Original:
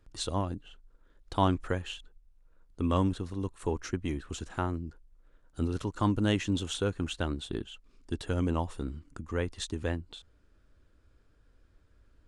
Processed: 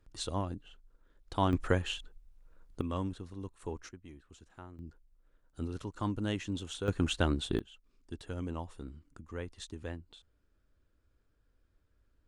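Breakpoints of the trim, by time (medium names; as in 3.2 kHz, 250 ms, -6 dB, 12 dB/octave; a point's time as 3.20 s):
-3.5 dB
from 1.53 s +3 dB
from 2.81 s -8.5 dB
from 3.89 s -18 dB
from 4.79 s -7 dB
from 6.88 s +3 dB
from 7.59 s -9 dB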